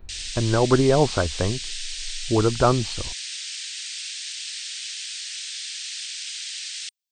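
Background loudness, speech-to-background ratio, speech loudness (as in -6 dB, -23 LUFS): -30.5 LUFS, 8.5 dB, -22.0 LUFS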